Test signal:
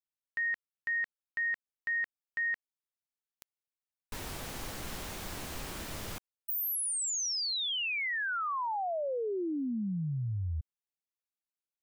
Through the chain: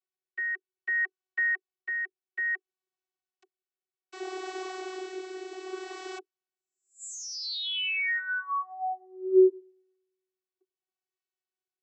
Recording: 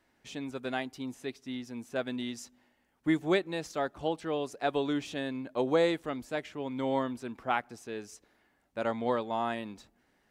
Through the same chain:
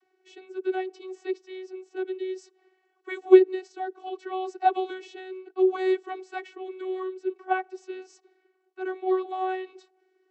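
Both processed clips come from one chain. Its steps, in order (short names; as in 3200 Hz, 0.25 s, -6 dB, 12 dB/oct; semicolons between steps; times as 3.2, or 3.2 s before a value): vocoder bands 32, saw 374 Hz; rotary speaker horn 0.6 Hz; gain +8.5 dB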